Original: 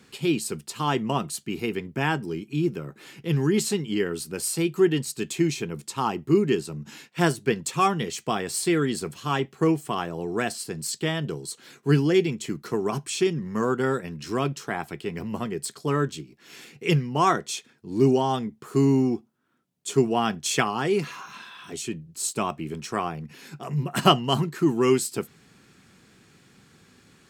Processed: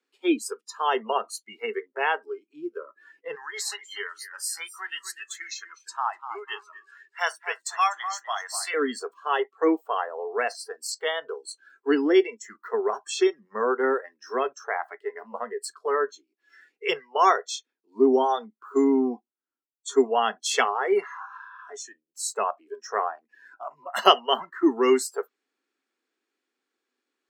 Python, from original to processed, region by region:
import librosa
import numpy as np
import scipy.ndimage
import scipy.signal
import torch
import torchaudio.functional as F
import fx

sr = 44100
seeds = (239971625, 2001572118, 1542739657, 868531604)

y = fx.chain(x, sr, fx.highpass(hz=980.0, slope=12),
    fx.echo_feedback(ms=247, feedback_pct=29, wet_db=-9.5), at=(3.35, 8.74))
y = scipy.signal.sosfilt(scipy.signal.butter(8, 270.0, 'highpass', fs=sr, output='sos'), y)
y = fx.noise_reduce_blind(y, sr, reduce_db=26)
y = fx.high_shelf(y, sr, hz=9100.0, db=-11.0)
y = y * librosa.db_to_amplitude(2.5)